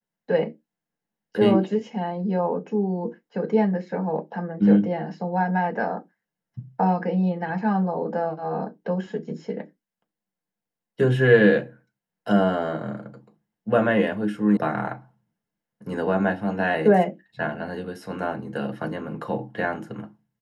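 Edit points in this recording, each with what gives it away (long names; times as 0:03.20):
0:14.57: cut off before it has died away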